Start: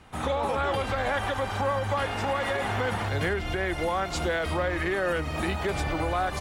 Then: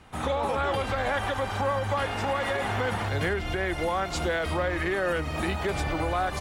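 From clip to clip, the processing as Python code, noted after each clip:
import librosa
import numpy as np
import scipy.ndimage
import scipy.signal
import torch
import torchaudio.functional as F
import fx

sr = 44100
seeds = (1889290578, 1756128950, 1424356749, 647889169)

y = x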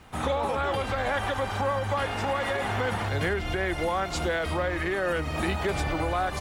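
y = fx.rider(x, sr, range_db=10, speed_s=0.5)
y = fx.dmg_crackle(y, sr, seeds[0], per_s=450.0, level_db=-52.0)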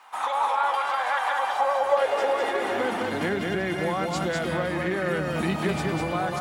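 y = fx.filter_sweep_highpass(x, sr, from_hz=930.0, to_hz=170.0, start_s=1.28, end_s=3.58, q=3.0)
y = y + 10.0 ** (-3.5 / 20.0) * np.pad(y, (int(200 * sr / 1000.0), 0))[:len(y)]
y = y * librosa.db_to_amplitude(-1.5)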